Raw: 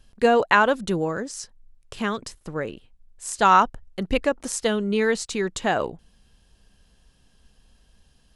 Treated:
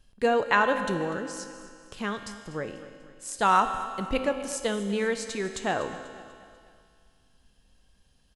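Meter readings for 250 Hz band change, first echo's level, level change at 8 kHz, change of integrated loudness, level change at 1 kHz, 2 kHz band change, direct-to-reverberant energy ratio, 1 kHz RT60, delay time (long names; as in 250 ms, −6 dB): −5.0 dB, −17.0 dB, −5.0 dB, −5.0 dB, −4.5 dB, −4.5 dB, 6.5 dB, 2.2 s, 245 ms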